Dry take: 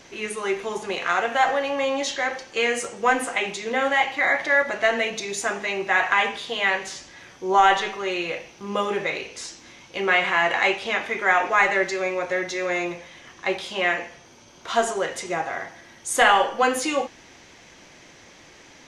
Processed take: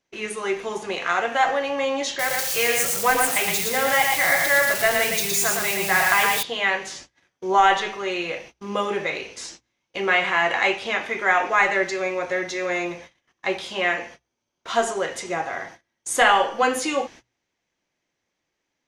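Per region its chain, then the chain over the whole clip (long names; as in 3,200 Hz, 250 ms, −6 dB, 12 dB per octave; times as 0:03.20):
0:02.19–0:06.43: spike at every zero crossing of −18 dBFS + low shelf with overshoot 190 Hz +7 dB, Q 3 + single-tap delay 115 ms −3.5 dB
whole clip: noise gate −41 dBFS, range −30 dB; mains-hum notches 60/120 Hz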